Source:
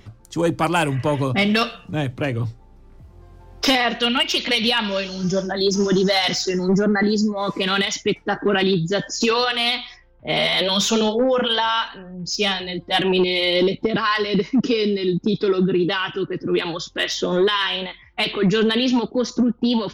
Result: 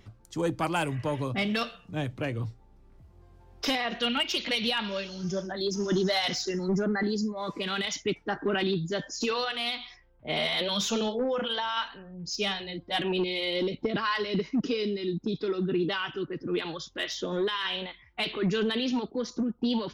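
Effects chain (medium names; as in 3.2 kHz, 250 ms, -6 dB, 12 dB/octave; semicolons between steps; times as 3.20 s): tremolo saw down 0.51 Hz, depth 30%; trim -8 dB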